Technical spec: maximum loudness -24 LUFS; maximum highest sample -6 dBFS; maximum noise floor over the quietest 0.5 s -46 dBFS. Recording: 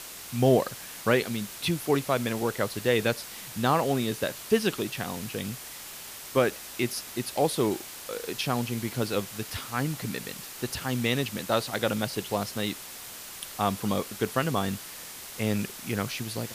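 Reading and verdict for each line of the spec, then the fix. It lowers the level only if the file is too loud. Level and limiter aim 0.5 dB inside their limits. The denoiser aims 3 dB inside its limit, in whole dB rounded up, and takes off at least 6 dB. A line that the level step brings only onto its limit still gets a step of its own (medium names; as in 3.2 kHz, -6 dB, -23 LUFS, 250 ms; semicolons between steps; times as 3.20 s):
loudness -29.0 LUFS: pass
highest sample -9.0 dBFS: pass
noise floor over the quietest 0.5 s -42 dBFS: fail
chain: noise reduction 7 dB, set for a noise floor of -42 dBFS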